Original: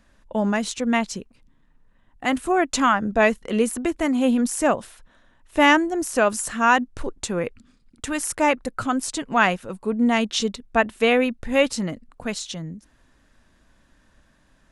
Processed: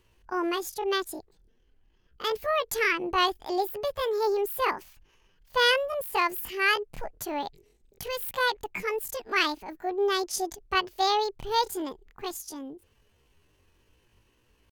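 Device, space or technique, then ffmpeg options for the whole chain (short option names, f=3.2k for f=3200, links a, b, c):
chipmunk voice: -af "asetrate=74167,aresample=44100,atempo=0.594604,volume=-6.5dB"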